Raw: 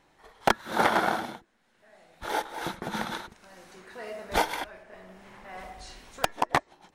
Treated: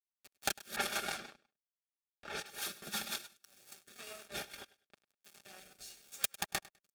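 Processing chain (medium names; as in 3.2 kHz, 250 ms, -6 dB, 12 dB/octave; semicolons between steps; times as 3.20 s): comb filter that takes the minimum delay 5 ms; pre-emphasis filter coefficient 0.9; 0.76–2.46 s: level-controlled noise filter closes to 610 Hz, open at -34.5 dBFS; Chebyshev shaper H 6 -18 dB, 7 -33 dB, 8 -20 dB, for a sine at -12.5 dBFS; compression 3:1, threshold -42 dBFS, peak gain reduction 10.5 dB; 4.28–5.23 s: treble shelf 4.5 kHz -11.5 dB; crossover distortion -58.5 dBFS; upward compressor, threshold -53 dBFS; comb of notches 1 kHz; on a send: feedback delay 101 ms, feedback 23%, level -19 dB; on the sum: rotary cabinet horn 6 Hz, later 0.9 Hz, at 3.24 s; trim +13 dB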